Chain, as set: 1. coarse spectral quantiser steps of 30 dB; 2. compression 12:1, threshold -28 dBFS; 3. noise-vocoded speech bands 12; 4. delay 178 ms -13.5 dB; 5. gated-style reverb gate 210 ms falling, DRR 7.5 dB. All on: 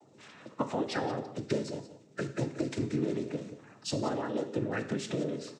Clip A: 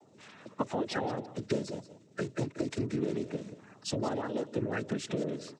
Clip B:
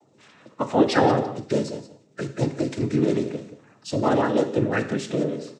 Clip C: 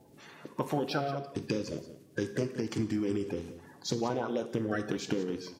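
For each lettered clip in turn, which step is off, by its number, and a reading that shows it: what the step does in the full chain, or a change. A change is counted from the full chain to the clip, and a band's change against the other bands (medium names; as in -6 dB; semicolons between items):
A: 5, echo-to-direct -6.5 dB to -13.5 dB; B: 2, mean gain reduction 7.5 dB; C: 3, momentary loudness spread change -2 LU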